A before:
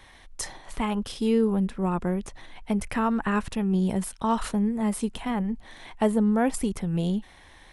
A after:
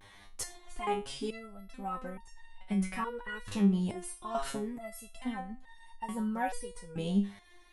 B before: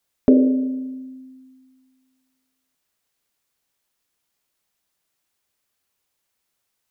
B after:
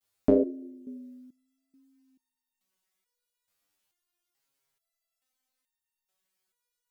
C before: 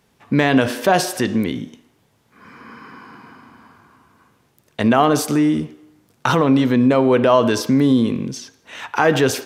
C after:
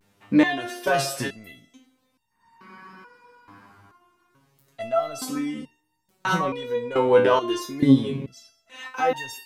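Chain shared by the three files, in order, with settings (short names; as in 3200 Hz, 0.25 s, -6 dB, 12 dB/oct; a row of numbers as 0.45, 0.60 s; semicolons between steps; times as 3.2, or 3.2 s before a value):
vibrato 0.69 Hz 59 cents; stepped resonator 2.3 Hz 100–910 Hz; gain +6.5 dB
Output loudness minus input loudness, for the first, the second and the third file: -8.5, -7.0, -6.0 LU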